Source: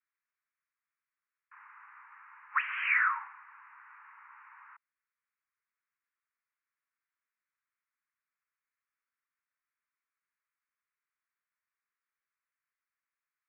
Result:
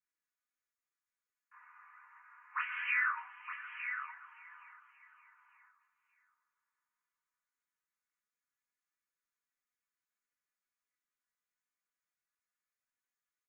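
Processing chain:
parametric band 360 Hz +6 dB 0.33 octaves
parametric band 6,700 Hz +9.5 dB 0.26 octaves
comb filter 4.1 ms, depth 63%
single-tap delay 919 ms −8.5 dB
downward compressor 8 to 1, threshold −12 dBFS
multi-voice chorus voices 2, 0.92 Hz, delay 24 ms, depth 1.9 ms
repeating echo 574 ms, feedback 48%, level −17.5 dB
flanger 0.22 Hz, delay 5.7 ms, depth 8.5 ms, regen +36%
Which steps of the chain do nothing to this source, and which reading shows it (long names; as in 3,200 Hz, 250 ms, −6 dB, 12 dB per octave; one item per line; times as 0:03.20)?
parametric band 360 Hz: nothing at its input below 760 Hz
parametric band 6,700 Hz: nothing at its input above 3,000 Hz
downward compressor, threshold −12 dBFS: peak of its input −15.0 dBFS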